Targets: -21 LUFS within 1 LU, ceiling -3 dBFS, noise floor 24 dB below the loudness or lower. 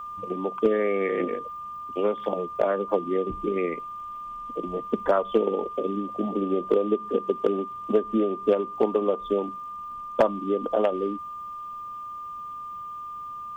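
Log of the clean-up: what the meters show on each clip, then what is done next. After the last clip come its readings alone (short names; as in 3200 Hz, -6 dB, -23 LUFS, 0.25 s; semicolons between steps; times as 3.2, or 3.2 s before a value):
steady tone 1200 Hz; tone level -34 dBFS; loudness -27.5 LUFS; peak -10.5 dBFS; loudness target -21.0 LUFS
-> notch 1200 Hz, Q 30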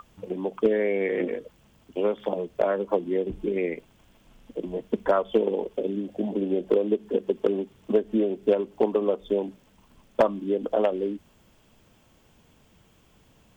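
steady tone none; loudness -26.5 LUFS; peak -10.5 dBFS; loudness target -21.0 LUFS
-> gain +5.5 dB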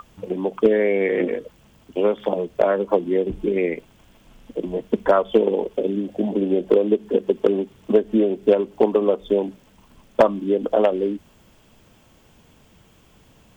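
loudness -21.0 LUFS; peak -5.0 dBFS; noise floor -55 dBFS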